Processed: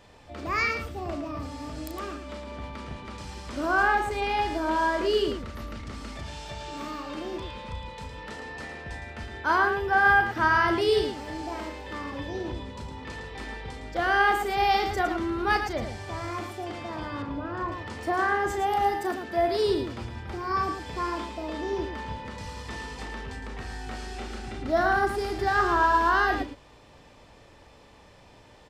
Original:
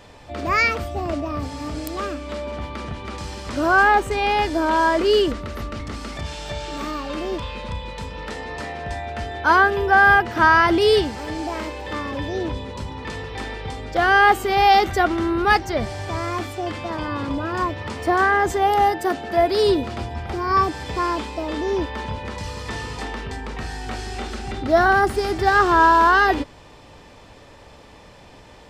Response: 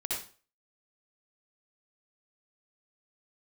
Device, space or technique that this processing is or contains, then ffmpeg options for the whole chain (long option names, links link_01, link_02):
slapback doubling: -filter_complex "[0:a]asplit=3[link_01][link_02][link_03];[link_02]adelay=35,volume=-8.5dB[link_04];[link_03]adelay=111,volume=-7.5dB[link_05];[link_01][link_04][link_05]amix=inputs=3:normalize=0,asettb=1/sr,asplit=3[link_06][link_07][link_08];[link_06]atrim=end=17.224[link_09];[link_07]atrim=start=17.22:end=17.72,asetpts=PTS-STARTPTS,afade=type=in:duration=0.004:curve=qsin,afade=type=out:start_time=0.496:duration=0.004:curve=qsin,lowpass=frequency=1900:poles=1[link_10];[link_08]atrim=start=17.716[link_11];[link_09][link_10]acrossfade=duration=0.004:curve1=hsin:curve2=qsin[link_12];[link_12][link_11]acrossfade=duration=0.004:curve1=qsin:curve2=hsin,volume=-8.5dB"